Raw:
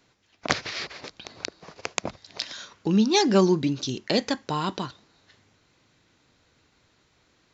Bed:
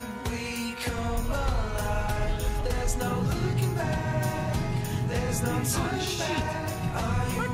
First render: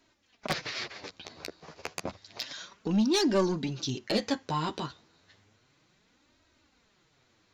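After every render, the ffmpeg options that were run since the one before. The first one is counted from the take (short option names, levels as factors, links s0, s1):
-af "asoftclip=type=tanh:threshold=0.168,flanger=delay=3.1:depth=9.9:regen=3:speed=0.31:shape=sinusoidal"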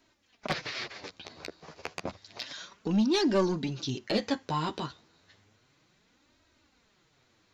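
-filter_complex "[0:a]acrossover=split=5300[s0][s1];[s1]acompressor=threshold=0.00355:ratio=4:attack=1:release=60[s2];[s0][s2]amix=inputs=2:normalize=0"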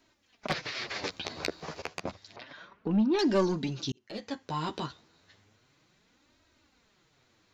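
-filter_complex "[0:a]asettb=1/sr,asplit=3[s0][s1][s2];[s0]atrim=end=2.364[s3];[s1]atrim=start=2.36:end=3.19,asetpts=PTS-STARTPTS,afade=t=in:d=0.004:c=qsin,afade=t=out:st=0.826:d=0.004:c=qsin,lowpass=1900[s4];[s2]atrim=start=3.186[s5];[s3][s4]acrossfade=d=0.004:c1=hsin:c2=qsin[s6];[s6][s5]acrossfade=d=0.004:c1=qsin:c2=hsin,asplit=4[s7][s8][s9][s10];[s7]atrim=end=0.882[s11];[s8]atrim=start=0.878:end=1.822,asetpts=PTS-STARTPTS,volume=2.66[s12];[s9]atrim=start=1.818:end=3.92,asetpts=PTS-STARTPTS,afade=t=out:st=2.098:d=0.004:c=hsin[s13];[s10]atrim=start=3.92,asetpts=PTS-STARTPTS,afade=t=in:d=0.89[s14];[s11][s12]acrossfade=d=0.004:c1=hsin:c2=hsin[s15];[s13][s14]concat=n=2:v=0:a=1[s16];[s15][s16]acrossfade=d=0.004:c1=hsin:c2=hsin"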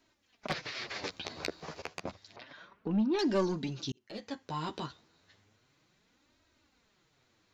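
-af "volume=0.668"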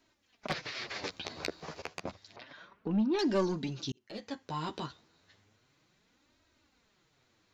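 -af anull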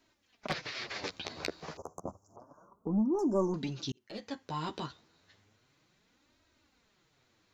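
-filter_complex "[0:a]asettb=1/sr,asplit=3[s0][s1][s2];[s0]atrim=end=1.774[s3];[s1]atrim=start=1.77:end=3.54,asetpts=PTS-STARTPTS,afade=t=in:d=0.004:c=qsin,afade=t=out:st=1.766:d=0.004:c=qsin,asuperstop=centerf=2800:order=12:qfactor=0.55[s4];[s2]atrim=start=3.536[s5];[s3][s4]acrossfade=d=0.004:c1=hsin:c2=qsin[s6];[s6][s5]acrossfade=d=0.004:c1=qsin:c2=hsin"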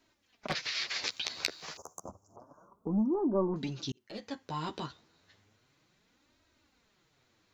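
-filter_complex "[0:a]asettb=1/sr,asplit=3[s0][s1][s2];[s0]atrim=end=0.554[s3];[s1]atrim=start=0.55:end=2.09,asetpts=PTS-STARTPTS,afade=t=in:d=0.004:c=qsin,afade=t=out:st=1.536:d=0.004:c=qsin,tiltshelf=f=1300:g=-9.5[s4];[s2]atrim=start=2.086[s5];[s3][s4]acrossfade=d=0.004:c1=hsin:c2=qsin[s6];[s6][s5]acrossfade=d=0.004:c1=qsin:c2=hsin,asettb=1/sr,asplit=3[s7][s8][s9];[s7]atrim=end=3.144[s10];[s8]atrim=start=3.14:end=3.56,asetpts=PTS-STARTPTS,afade=t=in:d=0.004:c=qsin,afade=t=out:st=0.416:d=0.004:c=qsin,lowpass=f=2000:w=0.5412,lowpass=f=2000:w=1.3066[s11];[s9]atrim=start=3.556[s12];[s10][s11]acrossfade=d=0.004:c1=hsin:c2=qsin[s13];[s13][s12]acrossfade=d=0.004:c1=qsin:c2=hsin"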